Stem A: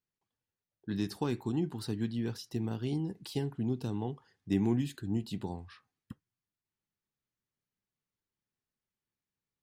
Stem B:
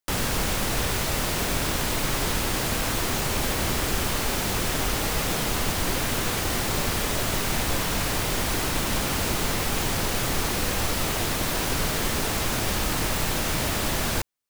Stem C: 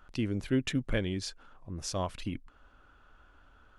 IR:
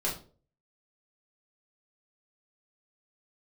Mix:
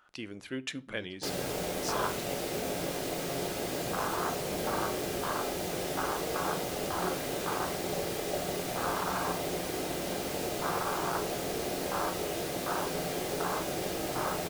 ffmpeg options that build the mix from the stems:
-filter_complex "[0:a]lowpass=4600,volume=-16.5dB[link_01];[1:a]afwtdn=0.0562,highpass=frequency=1200:poles=1,adelay=1150,volume=0.5dB,asplit=2[link_02][link_03];[link_03]volume=-3.5dB[link_04];[2:a]highpass=frequency=710:poles=1,volume=-1.5dB,asplit=2[link_05][link_06];[link_06]volume=-20dB[link_07];[3:a]atrim=start_sample=2205[link_08];[link_04][link_07]amix=inputs=2:normalize=0[link_09];[link_09][link_08]afir=irnorm=-1:irlink=0[link_10];[link_01][link_02][link_05][link_10]amix=inputs=4:normalize=0"

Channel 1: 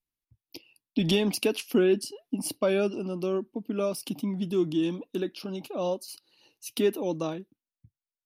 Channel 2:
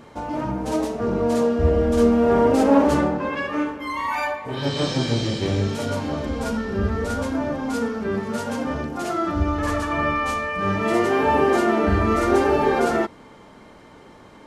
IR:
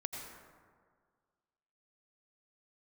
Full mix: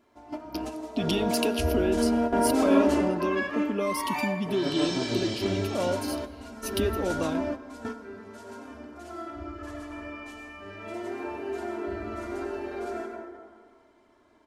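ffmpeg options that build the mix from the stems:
-filter_complex "[0:a]equalizer=frequency=100:width=4.7:gain=10.5,acompressor=threshold=-26dB:ratio=6,volume=1.5dB,asplit=3[link_01][link_02][link_03];[link_02]volume=-14dB[link_04];[1:a]aecho=1:1:3:0.79,volume=-8.5dB,asplit=2[link_05][link_06];[link_06]volume=-9.5dB[link_07];[link_03]apad=whole_len=638241[link_08];[link_05][link_08]sidechaingate=range=-33dB:threshold=-52dB:ratio=16:detection=peak[link_09];[2:a]atrim=start_sample=2205[link_10];[link_04][link_07]amix=inputs=2:normalize=0[link_11];[link_11][link_10]afir=irnorm=-1:irlink=0[link_12];[link_01][link_09][link_12]amix=inputs=3:normalize=0,lowshelf=frequency=160:gain=-6"

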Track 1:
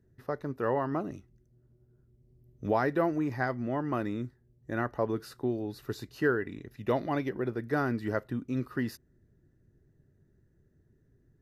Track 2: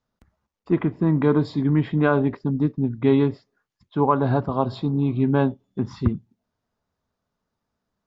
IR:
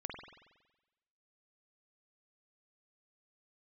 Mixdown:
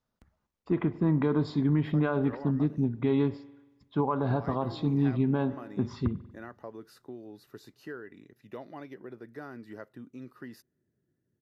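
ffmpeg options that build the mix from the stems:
-filter_complex "[0:a]highpass=150,acompressor=threshold=-32dB:ratio=2,adelay=1650,volume=-9dB[link_01];[1:a]volume=-5dB,asplit=2[link_02][link_03];[link_03]volume=-13.5dB[link_04];[2:a]atrim=start_sample=2205[link_05];[link_04][link_05]afir=irnorm=-1:irlink=0[link_06];[link_01][link_02][link_06]amix=inputs=3:normalize=0,alimiter=limit=-17dB:level=0:latency=1:release=121"

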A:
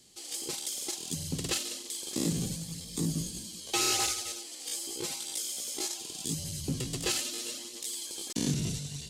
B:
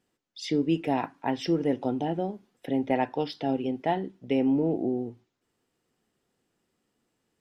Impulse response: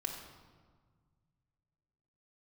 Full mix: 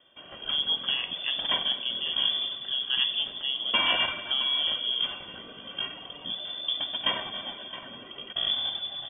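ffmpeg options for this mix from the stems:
-filter_complex "[0:a]highpass=86,aecho=1:1:2.4:0.62,volume=2dB,asplit=3[link_01][link_02][link_03];[link_02]volume=-7.5dB[link_04];[link_03]volume=-10.5dB[link_05];[1:a]volume=-6dB,asplit=2[link_06][link_07];[link_07]volume=-6.5dB[link_08];[2:a]atrim=start_sample=2205[link_09];[link_04][link_08]amix=inputs=2:normalize=0[link_10];[link_10][link_09]afir=irnorm=-1:irlink=0[link_11];[link_05]aecho=0:1:667:1[link_12];[link_01][link_06][link_11][link_12]amix=inputs=4:normalize=0,lowpass=frequency=3100:width_type=q:width=0.5098,lowpass=frequency=3100:width_type=q:width=0.6013,lowpass=frequency=3100:width_type=q:width=0.9,lowpass=frequency=3100:width_type=q:width=2.563,afreqshift=-3600"

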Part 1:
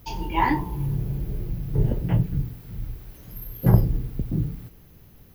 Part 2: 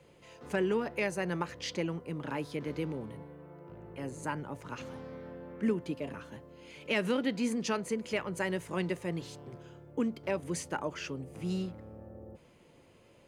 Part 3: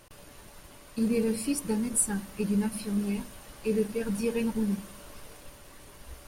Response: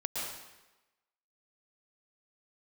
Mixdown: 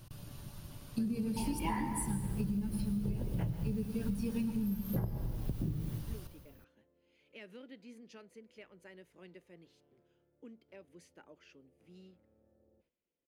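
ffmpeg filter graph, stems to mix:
-filter_complex "[0:a]agate=range=-7dB:threshold=-40dB:ratio=16:detection=peak,adelay=1300,volume=-6dB,asplit=2[link_01][link_02];[link_02]volume=-8.5dB[link_03];[1:a]agate=range=-11dB:threshold=-55dB:ratio=16:detection=peak,equalizer=frequency=125:width_type=o:width=1:gain=-11,equalizer=frequency=1000:width_type=o:width=1:gain=-9,equalizer=frequency=8000:width_type=o:width=1:gain=-9,adelay=450,volume=-18.5dB[link_04];[2:a]equalizer=frequency=125:width_type=o:width=1:gain=11,equalizer=frequency=500:width_type=o:width=1:gain=-10,equalizer=frequency=1000:width_type=o:width=1:gain=-4,equalizer=frequency=2000:width_type=o:width=1:gain=-10,equalizer=frequency=8000:width_type=o:width=1:gain=-8,volume=-1dB,asplit=2[link_05][link_06];[link_06]volume=-9dB[link_07];[3:a]atrim=start_sample=2205[link_08];[link_03][link_07]amix=inputs=2:normalize=0[link_09];[link_09][link_08]afir=irnorm=-1:irlink=0[link_10];[link_01][link_04][link_05][link_10]amix=inputs=4:normalize=0,acompressor=threshold=-31dB:ratio=16"

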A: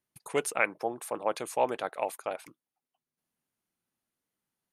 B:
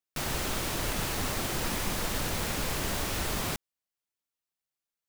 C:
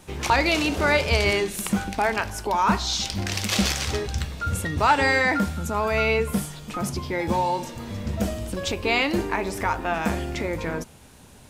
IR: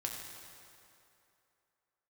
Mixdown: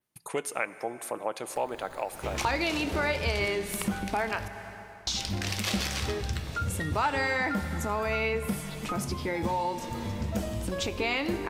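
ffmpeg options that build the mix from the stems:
-filter_complex "[0:a]volume=2dB,asplit=3[link_01][link_02][link_03];[link_02]volume=-12dB[link_04];[1:a]highshelf=frequency=4700:gain=9,acrusher=samples=11:mix=1:aa=0.000001:lfo=1:lforange=11:lforate=0.61,adelay=1400,volume=-18.5dB,asplit=2[link_05][link_06];[link_06]volume=-20.5dB[link_07];[2:a]adelay=2150,volume=-1dB,asplit=3[link_08][link_09][link_10];[link_08]atrim=end=4.48,asetpts=PTS-STARTPTS,afade=type=out:start_time=4.476:duration=0.004:curve=hsin[link_11];[link_09]atrim=start=4.48:end=5.07,asetpts=PTS-STARTPTS,volume=0[link_12];[link_10]atrim=start=5.07,asetpts=PTS-STARTPTS,afade=type=in:duration=0.004:curve=hsin[link_13];[link_11][link_12][link_13]concat=n=3:v=0:a=1,asplit=2[link_14][link_15];[link_15]volume=-8.5dB[link_16];[link_03]apad=whole_len=285968[link_17];[link_05][link_17]sidechaingate=range=-33dB:threshold=-56dB:ratio=16:detection=peak[link_18];[3:a]atrim=start_sample=2205[link_19];[link_04][link_07][link_16]amix=inputs=3:normalize=0[link_20];[link_20][link_19]afir=irnorm=-1:irlink=0[link_21];[link_01][link_18][link_14][link_21]amix=inputs=4:normalize=0,adynamicequalizer=threshold=0.00631:dfrequency=6800:dqfactor=1.6:tfrequency=6800:tqfactor=1.6:attack=5:release=100:ratio=0.375:range=2:mode=cutabove:tftype=bell,acompressor=threshold=-32dB:ratio=2"

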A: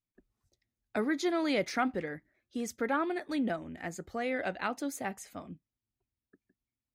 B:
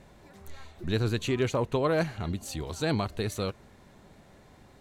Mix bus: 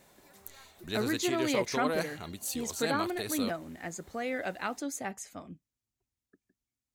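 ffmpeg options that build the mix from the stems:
ffmpeg -i stem1.wav -i stem2.wav -filter_complex "[0:a]equalizer=frequency=6800:width=1.5:gain=6.5,volume=-1dB[link_01];[1:a]aemphasis=mode=production:type=bsi,volume=-4.5dB[link_02];[link_01][link_02]amix=inputs=2:normalize=0" out.wav

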